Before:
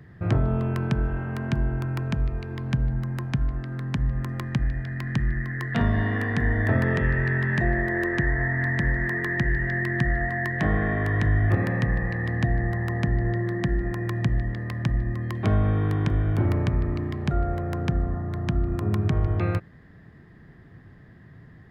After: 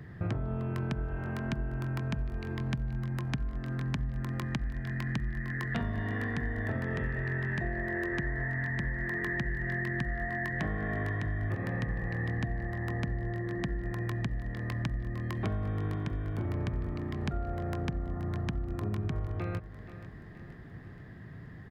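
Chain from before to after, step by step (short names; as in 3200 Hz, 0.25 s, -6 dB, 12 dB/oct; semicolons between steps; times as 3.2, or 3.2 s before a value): compressor, threshold -32 dBFS, peak gain reduction 15 dB; feedback echo 0.477 s, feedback 52%, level -14 dB; gain +1.5 dB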